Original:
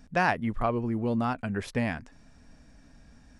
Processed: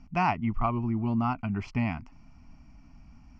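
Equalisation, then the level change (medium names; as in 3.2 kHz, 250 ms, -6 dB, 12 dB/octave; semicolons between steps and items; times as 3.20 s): distance through air 170 m; static phaser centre 2.5 kHz, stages 8; +3.5 dB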